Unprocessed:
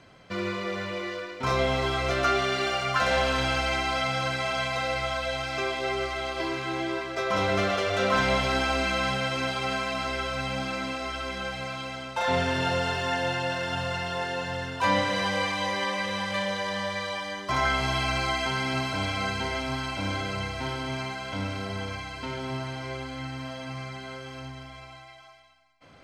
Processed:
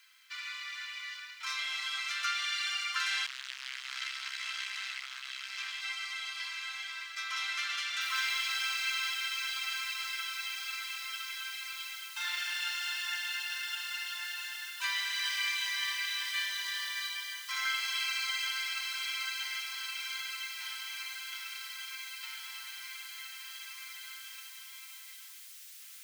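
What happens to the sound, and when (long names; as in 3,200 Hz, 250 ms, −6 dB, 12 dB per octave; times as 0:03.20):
0:03.26–0:05.82: saturating transformer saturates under 2,000 Hz
0:08.01: noise floor change −70 dB −50 dB
0:15.20–0:17.08: double-tracking delay 34 ms −5 dB
whole clip: Bessel high-pass filter 2,300 Hz, order 6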